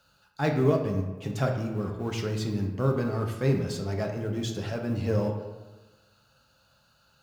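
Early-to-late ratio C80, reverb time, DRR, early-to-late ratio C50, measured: 8.0 dB, 1.2 s, 2.0 dB, 6.0 dB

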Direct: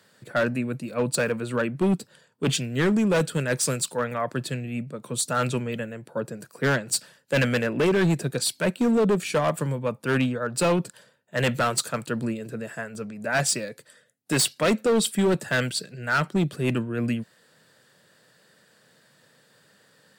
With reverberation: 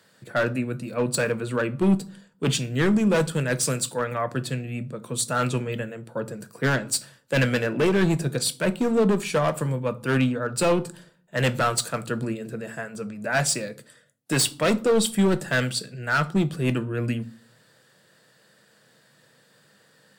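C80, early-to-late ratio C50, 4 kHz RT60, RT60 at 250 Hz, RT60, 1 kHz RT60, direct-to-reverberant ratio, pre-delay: 25.0 dB, 20.0 dB, 0.30 s, 0.60 s, 0.50 s, 0.50 s, 11.0 dB, 6 ms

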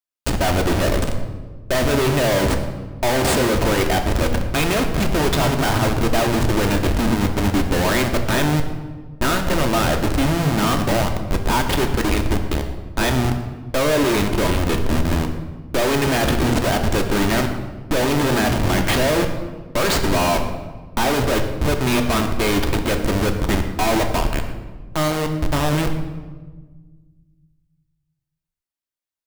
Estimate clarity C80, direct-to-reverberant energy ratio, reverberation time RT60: 9.0 dB, 4.0 dB, 1.4 s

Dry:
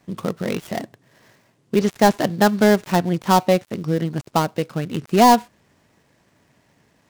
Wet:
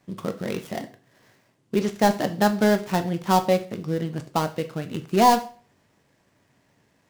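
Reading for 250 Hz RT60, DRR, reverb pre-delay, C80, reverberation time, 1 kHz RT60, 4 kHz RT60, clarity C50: 0.40 s, 8.0 dB, 5 ms, 20.0 dB, 0.40 s, 0.40 s, 0.35 s, 15.0 dB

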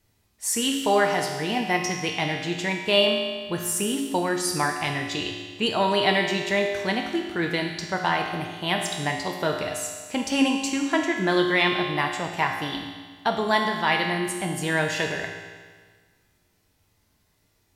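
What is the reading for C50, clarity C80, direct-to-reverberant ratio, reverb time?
3.5 dB, 5.0 dB, 0.5 dB, 1.6 s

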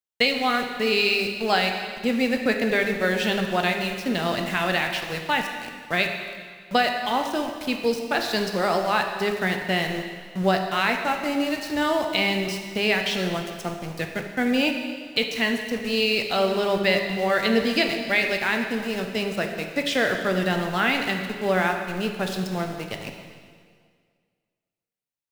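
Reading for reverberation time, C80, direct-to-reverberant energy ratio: 1.9 s, 6.5 dB, 3.5 dB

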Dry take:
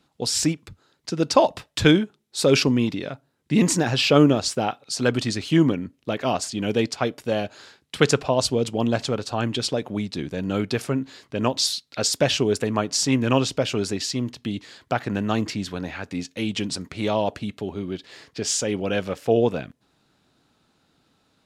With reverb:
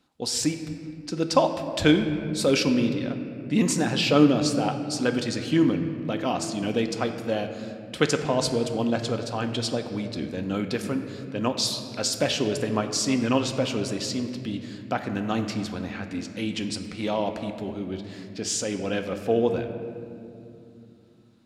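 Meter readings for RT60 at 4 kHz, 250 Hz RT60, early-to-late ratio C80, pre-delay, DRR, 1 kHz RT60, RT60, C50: 1.4 s, 4.4 s, 9.0 dB, 3 ms, 6.0 dB, 2.2 s, 2.6 s, 8.0 dB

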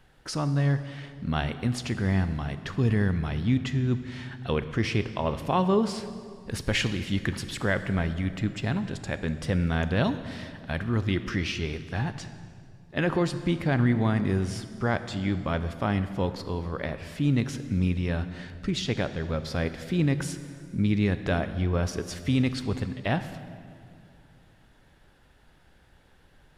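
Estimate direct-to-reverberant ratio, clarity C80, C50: 11.0 dB, 12.5 dB, 11.5 dB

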